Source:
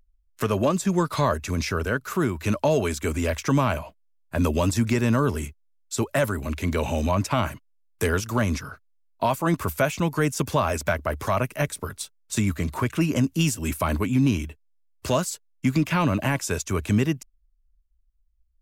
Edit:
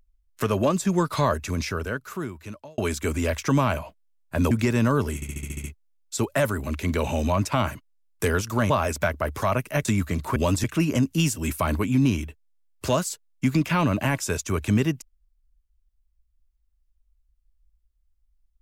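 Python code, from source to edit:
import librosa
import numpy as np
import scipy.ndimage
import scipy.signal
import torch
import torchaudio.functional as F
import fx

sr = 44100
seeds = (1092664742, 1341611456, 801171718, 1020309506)

y = fx.edit(x, sr, fx.fade_out_span(start_s=1.39, length_s=1.39),
    fx.move(start_s=4.51, length_s=0.28, to_s=12.85),
    fx.stutter(start_s=5.43, slice_s=0.07, count=8),
    fx.cut(start_s=8.49, length_s=2.06),
    fx.cut(start_s=11.7, length_s=0.64), tone=tone)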